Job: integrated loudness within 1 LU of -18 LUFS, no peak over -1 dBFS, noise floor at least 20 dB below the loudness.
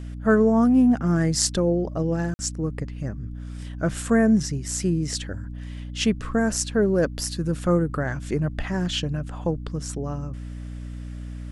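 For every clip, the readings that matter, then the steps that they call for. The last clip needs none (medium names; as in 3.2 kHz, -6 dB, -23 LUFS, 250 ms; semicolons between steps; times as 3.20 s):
dropouts 1; longest dropout 50 ms; hum 60 Hz; highest harmonic 300 Hz; hum level -32 dBFS; loudness -23.5 LUFS; peak level -3.5 dBFS; loudness target -18.0 LUFS
-> interpolate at 2.34 s, 50 ms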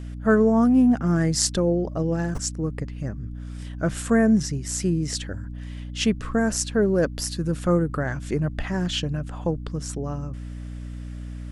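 dropouts 0; hum 60 Hz; highest harmonic 300 Hz; hum level -32 dBFS
-> de-hum 60 Hz, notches 5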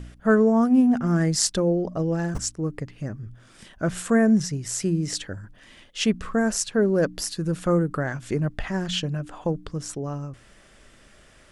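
hum not found; loudness -24.0 LUFS; peak level -3.5 dBFS; loudness target -18.0 LUFS
-> trim +6 dB; peak limiter -1 dBFS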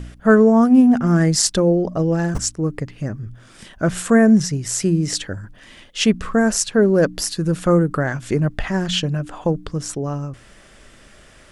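loudness -18.0 LUFS; peak level -1.0 dBFS; noise floor -47 dBFS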